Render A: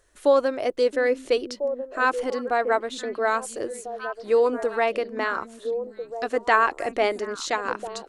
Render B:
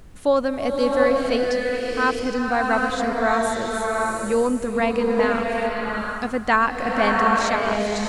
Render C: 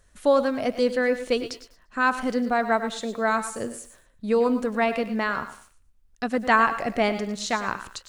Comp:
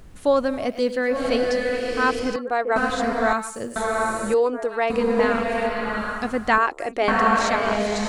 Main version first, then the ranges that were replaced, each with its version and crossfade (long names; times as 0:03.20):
B
0:00.64–0:01.16: punch in from C, crossfade 0.16 s
0:02.36–0:02.76: punch in from A
0:03.33–0:03.76: punch in from C
0:04.34–0:04.90: punch in from A
0:06.58–0:07.08: punch in from A